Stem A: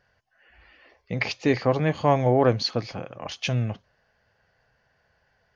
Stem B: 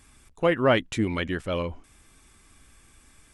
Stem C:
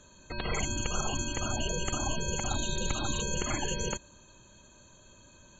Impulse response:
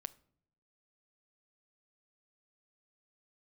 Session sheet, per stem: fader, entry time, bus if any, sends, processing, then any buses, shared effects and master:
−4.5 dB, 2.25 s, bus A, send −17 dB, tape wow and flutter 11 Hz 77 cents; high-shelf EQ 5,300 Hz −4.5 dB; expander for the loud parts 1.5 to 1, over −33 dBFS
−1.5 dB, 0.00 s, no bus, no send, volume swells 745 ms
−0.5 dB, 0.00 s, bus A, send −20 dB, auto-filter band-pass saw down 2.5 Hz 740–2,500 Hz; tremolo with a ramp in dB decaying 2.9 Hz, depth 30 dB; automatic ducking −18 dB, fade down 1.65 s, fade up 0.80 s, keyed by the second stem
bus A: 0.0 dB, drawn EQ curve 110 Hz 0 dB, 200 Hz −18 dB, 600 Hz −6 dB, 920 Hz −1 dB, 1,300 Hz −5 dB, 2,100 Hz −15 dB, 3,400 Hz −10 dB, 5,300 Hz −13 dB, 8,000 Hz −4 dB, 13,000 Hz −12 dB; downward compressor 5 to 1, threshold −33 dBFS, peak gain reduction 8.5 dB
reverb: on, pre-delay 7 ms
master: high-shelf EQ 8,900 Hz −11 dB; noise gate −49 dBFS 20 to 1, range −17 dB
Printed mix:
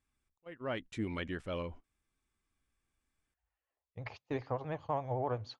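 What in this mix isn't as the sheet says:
stem A: entry 2.25 s → 2.85 s
stem B −1.5 dB → −10.0 dB
stem C: muted

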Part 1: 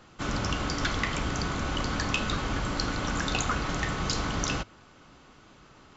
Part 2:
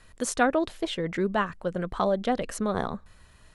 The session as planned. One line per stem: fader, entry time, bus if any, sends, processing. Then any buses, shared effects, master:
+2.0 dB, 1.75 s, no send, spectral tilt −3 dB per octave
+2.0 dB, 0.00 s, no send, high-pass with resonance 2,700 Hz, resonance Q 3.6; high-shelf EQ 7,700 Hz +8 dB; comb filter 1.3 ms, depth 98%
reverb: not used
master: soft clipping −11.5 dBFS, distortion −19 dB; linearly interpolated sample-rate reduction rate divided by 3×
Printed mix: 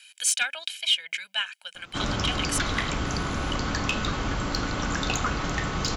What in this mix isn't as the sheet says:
stem 1: missing spectral tilt −3 dB per octave
master: missing linearly interpolated sample-rate reduction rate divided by 3×

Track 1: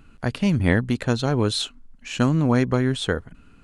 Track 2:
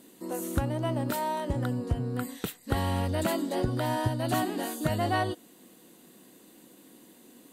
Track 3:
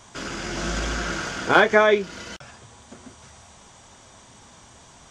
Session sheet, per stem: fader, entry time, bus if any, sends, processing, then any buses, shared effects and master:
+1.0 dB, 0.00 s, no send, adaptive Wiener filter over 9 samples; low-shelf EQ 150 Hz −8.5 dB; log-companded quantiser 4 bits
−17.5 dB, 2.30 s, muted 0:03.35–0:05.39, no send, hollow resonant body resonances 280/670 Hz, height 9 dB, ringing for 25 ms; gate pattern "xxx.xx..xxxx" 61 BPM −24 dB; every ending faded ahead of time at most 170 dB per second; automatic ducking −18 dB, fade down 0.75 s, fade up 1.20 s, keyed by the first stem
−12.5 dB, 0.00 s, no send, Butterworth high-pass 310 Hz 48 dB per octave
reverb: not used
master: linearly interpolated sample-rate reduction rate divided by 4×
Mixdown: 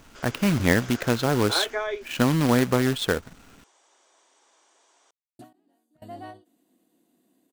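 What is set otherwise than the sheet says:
stem 2: entry 2.30 s → 1.10 s
master: missing linearly interpolated sample-rate reduction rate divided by 4×

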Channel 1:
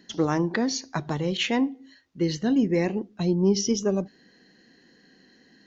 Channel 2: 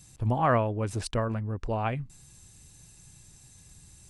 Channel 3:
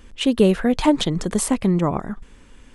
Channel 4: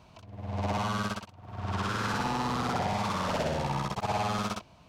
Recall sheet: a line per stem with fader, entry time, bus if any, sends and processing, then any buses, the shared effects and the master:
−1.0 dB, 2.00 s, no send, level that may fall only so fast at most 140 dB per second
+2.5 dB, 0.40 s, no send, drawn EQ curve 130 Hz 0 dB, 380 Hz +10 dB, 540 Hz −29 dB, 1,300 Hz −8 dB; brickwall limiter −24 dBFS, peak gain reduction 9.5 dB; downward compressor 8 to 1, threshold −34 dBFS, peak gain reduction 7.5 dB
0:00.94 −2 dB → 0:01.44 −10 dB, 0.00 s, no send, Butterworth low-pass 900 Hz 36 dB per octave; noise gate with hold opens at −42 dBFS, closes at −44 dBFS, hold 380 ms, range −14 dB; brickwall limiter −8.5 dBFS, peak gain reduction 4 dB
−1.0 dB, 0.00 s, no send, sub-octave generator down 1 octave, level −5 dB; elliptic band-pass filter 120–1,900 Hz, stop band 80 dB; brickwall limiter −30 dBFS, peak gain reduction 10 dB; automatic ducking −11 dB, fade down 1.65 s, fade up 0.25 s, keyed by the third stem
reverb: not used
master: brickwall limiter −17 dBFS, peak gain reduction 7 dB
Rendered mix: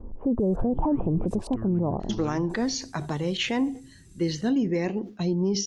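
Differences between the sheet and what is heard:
stem 3 −2.0 dB → +6.5 dB
stem 4: muted

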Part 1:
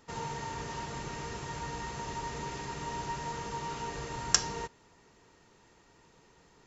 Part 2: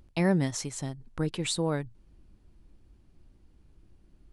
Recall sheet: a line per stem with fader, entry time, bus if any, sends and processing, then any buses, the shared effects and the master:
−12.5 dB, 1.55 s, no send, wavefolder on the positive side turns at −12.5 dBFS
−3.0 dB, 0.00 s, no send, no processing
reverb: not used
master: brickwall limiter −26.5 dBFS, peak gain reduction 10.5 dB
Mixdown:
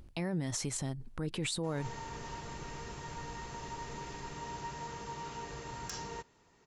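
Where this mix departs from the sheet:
stem 1 −12.5 dB → −5.0 dB
stem 2 −3.0 dB → +3.5 dB

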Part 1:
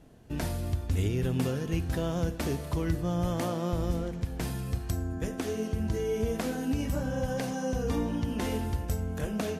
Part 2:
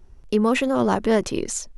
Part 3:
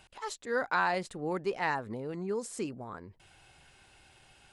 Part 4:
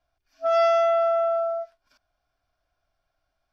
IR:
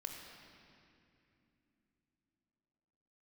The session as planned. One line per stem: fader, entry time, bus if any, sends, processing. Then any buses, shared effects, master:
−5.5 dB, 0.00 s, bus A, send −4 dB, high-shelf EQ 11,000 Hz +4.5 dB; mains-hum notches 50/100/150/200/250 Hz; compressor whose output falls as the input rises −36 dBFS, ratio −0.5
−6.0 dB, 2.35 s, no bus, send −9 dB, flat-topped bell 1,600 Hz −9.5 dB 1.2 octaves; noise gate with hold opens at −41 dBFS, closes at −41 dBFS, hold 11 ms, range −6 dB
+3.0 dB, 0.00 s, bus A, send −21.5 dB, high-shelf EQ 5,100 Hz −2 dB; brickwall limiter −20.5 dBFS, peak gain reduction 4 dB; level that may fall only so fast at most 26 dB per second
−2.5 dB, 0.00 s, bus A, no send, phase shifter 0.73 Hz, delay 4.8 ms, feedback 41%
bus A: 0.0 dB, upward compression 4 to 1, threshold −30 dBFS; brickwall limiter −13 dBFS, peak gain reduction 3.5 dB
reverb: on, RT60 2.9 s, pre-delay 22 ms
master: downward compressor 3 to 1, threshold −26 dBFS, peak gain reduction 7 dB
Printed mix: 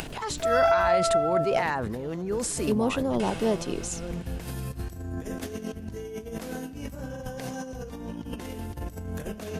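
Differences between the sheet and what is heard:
stem 2: send off
master: missing downward compressor 3 to 1, threshold −26 dBFS, peak gain reduction 7 dB

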